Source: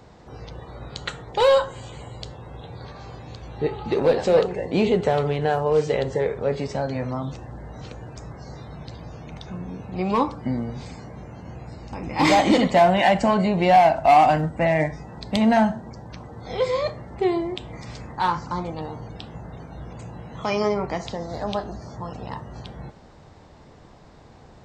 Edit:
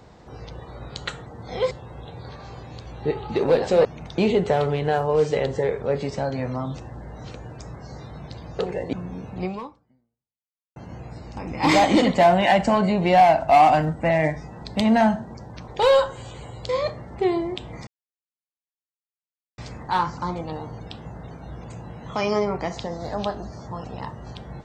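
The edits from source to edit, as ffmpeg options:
-filter_complex "[0:a]asplit=11[a][b][c][d][e][f][g][h][i][j][k];[a]atrim=end=1.262[l];[b]atrim=start=16.238:end=16.692[m];[c]atrim=start=2.268:end=4.412[n];[d]atrim=start=9.158:end=9.492[o];[e]atrim=start=4.748:end=9.162[p];[f]atrim=start=4.408:end=4.752[q];[g]atrim=start=9.488:end=11.32,asetpts=PTS-STARTPTS,afade=t=out:st=0.502:d=1.33:c=exp[r];[h]atrim=start=11.32:end=16.242,asetpts=PTS-STARTPTS,afade=t=in:d=0.004:c=hsin[s];[i]atrim=start=1.258:end=2.272[t];[j]atrim=start=16.688:end=17.87,asetpts=PTS-STARTPTS,afade=t=out:st=1.178:d=0.004:c=hsin,apad=pad_dur=1.71[u];[k]atrim=start=17.87,asetpts=PTS-STARTPTS,afade=t=in:d=0.004:c=hsin[v];[l][m]acrossfade=d=0.004:c1=hsin:c2=hsin[w];[w][n]acrossfade=d=0.004:c1=hsin:c2=hsin[x];[x][o]acrossfade=d=0.004:c1=hsin:c2=hsin[y];[y][p]acrossfade=d=0.004:c1=hsin:c2=hsin[z];[z][q]acrossfade=d=0.004:c1=hsin:c2=hsin[aa];[r][s]concat=n=2:v=0:a=1[ab];[aa][ab]acrossfade=d=0.004:c1=hsin:c2=hsin[ac];[ac][t]acrossfade=d=0.004:c1=hsin:c2=hsin[ad];[u][v]concat=n=2:v=0:a=1[ae];[ad][ae]acrossfade=d=0.004:c1=hsin:c2=hsin"

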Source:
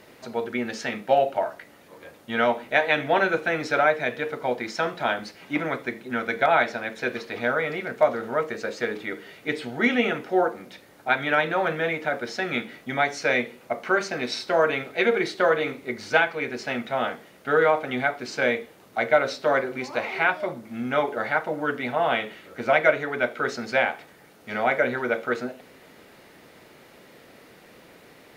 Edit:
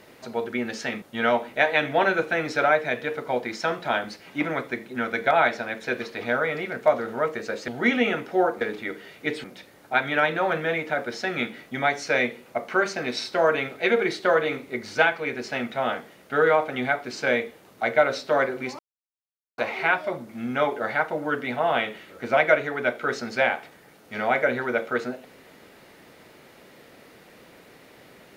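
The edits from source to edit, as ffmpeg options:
-filter_complex "[0:a]asplit=6[a][b][c][d][e][f];[a]atrim=end=1.022[g];[b]atrim=start=2.168:end=8.832[h];[c]atrim=start=9.658:end=10.592[i];[d]atrim=start=8.828:end=9.662[j];[e]atrim=start=10.588:end=19.94,asetpts=PTS-STARTPTS,afade=t=out:st=9.348:d=0.004:c=hsin,apad=pad_dur=0.79[k];[f]atrim=start=19.94,asetpts=PTS-STARTPTS,afade=t=in:d=0.004:c=hsin[l];[g][h]acrossfade=d=0.004:c1=hsin:c2=hsin[m];[m][i]acrossfade=d=0.004:c1=hsin:c2=hsin[n];[n][j]acrossfade=d=0.004:c1=hsin:c2=hsin[o];[k][l]concat=n=2:v=0:a=1[p];[o][p]acrossfade=d=0.004:c1=hsin:c2=hsin"

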